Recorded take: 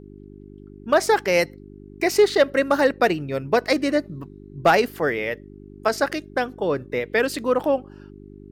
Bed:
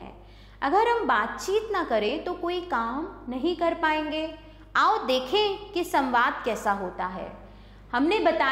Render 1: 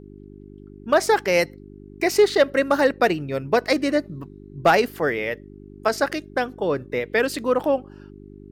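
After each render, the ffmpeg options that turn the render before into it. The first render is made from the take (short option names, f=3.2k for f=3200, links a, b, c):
-af anull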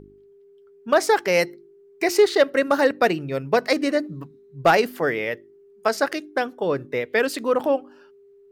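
-af "bandreject=f=50:t=h:w=4,bandreject=f=100:t=h:w=4,bandreject=f=150:t=h:w=4,bandreject=f=200:t=h:w=4,bandreject=f=250:t=h:w=4,bandreject=f=300:t=h:w=4,bandreject=f=350:t=h:w=4"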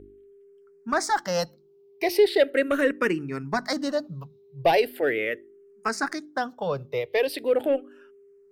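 -filter_complex "[0:a]asoftclip=type=tanh:threshold=-9dB,asplit=2[a][b];[b]afreqshift=-0.39[c];[a][c]amix=inputs=2:normalize=1"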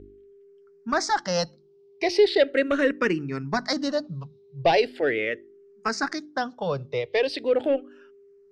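-af "lowpass=f=5.7k:w=0.5412,lowpass=f=5.7k:w=1.3066,bass=f=250:g=3,treble=f=4k:g=7"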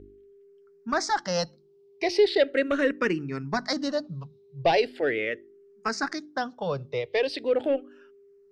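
-af "volume=-2dB"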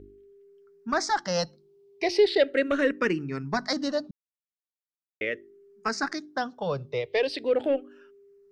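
-filter_complex "[0:a]asplit=3[a][b][c];[a]atrim=end=4.11,asetpts=PTS-STARTPTS,afade=t=out:st=4.106:d=0.004:c=hsin[d];[b]atrim=start=4.11:end=5.21,asetpts=PTS-STARTPTS,volume=0[e];[c]atrim=start=5.21,asetpts=PTS-STARTPTS,afade=t=in:d=0.004:c=hsin[f];[d][e][f]concat=n=3:v=0:a=1"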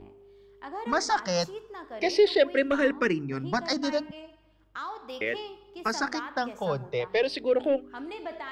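-filter_complex "[1:a]volume=-15.5dB[a];[0:a][a]amix=inputs=2:normalize=0"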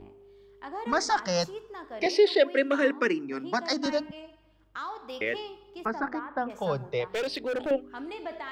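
-filter_complex "[0:a]asettb=1/sr,asplit=3[a][b][c];[a]atrim=end=2.064[d];[b]atrim=start=2.06:end=3.86,asetpts=PTS-STARTPTS,afade=t=in:d=0.004:c=qsin,afade=t=out:st=1.796:d=0.004:c=qsin,highpass=f=230:w=0.5412,highpass=f=230:w=1.3066[e];[c]atrim=start=3.856[f];[d][e]acrossfade=d=0.004:c1=hsin:c2=qsin[g];[g][f]acrossfade=d=0.004:c1=qsin:c2=hsin,asettb=1/sr,asplit=3[h][i][j];[h]atrim=end=5.854[k];[i]atrim=start=5.85:end=6.5,asetpts=PTS-STARTPTS,afade=t=in:d=0.004:c=qsin,afade=t=out:st=0.646:d=0.004:c=qsin,lowpass=1.4k[l];[j]atrim=start=6.496[m];[k][l]acrossfade=d=0.004:c1=hsin:c2=qsin[n];[n][m]acrossfade=d=0.004:c1=qsin:c2=hsin,asettb=1/sr,asplit=3[o][p][q];[o]atrim=end=7.094[r];[p]atrim=start=7.09:end=7.71,asetpts=PTS-STARTPTS,afade=t=in:d=0.004:c=qsin,afade=t=out:st=0.616:d=0.004:c=qsin,asoftclip=type=hard:threshold=-27dB[s];[q]atrim=start=7.706[t];[r][s]acrossfade=d=0.004:c1=hsin:c2=qsin[u];[u][t]acrossfade=d=0.004:c1=qsin:c2=hsin"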